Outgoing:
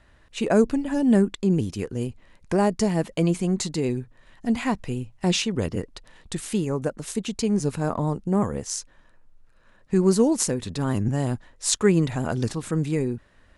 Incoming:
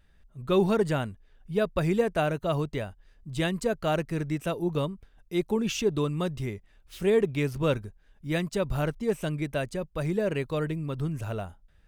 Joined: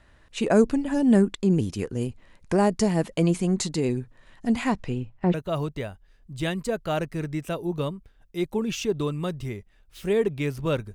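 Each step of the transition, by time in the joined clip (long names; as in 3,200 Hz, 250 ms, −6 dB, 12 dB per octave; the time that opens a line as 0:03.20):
outgoing
0:04.69–0:05.34: low-pass filter 9,600 Hz → 1,500 Hz
0:05.34: continue with incoming from 0:02.31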